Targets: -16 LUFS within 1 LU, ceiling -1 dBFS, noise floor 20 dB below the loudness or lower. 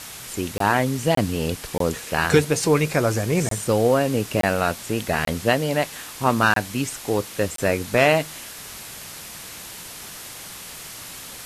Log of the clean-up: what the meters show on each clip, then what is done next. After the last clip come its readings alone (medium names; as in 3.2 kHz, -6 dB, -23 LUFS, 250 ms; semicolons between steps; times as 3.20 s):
dropouts 8; longest dropout 23 ms; noise floor -38 dBFS; noise floor target -42 dBFS; loudness -22.0 LUFS; peak level -5.0 dBFS; loudness target -16.0 LUFS
-> interpolate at 0.58/1.15/1.78/3.49/4.41/5.25/6.54/7.56 s, 23 ms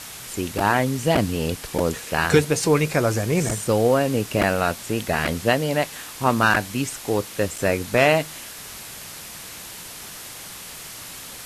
dropouts 0; noise floor -38 dBFS; noise floor target -42 dBFS
-> noise reduction 6 dB, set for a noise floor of -38 dBFS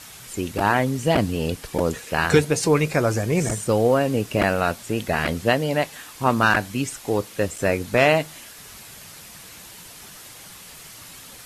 noise floor -43 dBFS; loudness -22.0 LUFS; peak level -5.0 dBFS; loudness target -16.0 LUFS
-> trim +6 dB; peak limiter -1 dBFS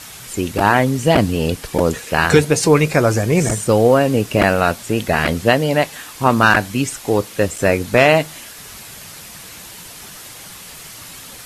loudness -16.0 LUFS; peak level -1.0 dBFS; noise floor -37 dBFS